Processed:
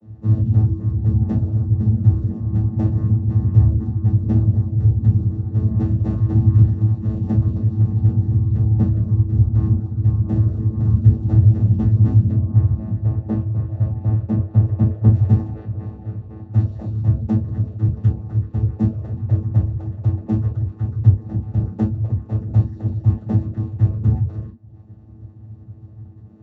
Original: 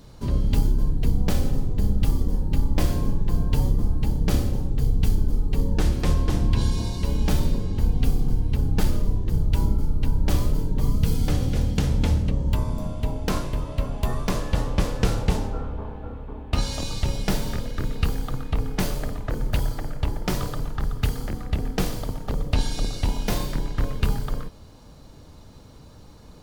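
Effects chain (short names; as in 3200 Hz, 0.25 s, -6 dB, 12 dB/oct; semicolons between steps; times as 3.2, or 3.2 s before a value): median filter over 41 samples; 12.36–15.12 high shelf 2900 Hz -10 dB; vocoder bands 16, saw 108 Hz; reverb removal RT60 0.65 s; reverb, pre-delay 3 ms, DRR -13 dB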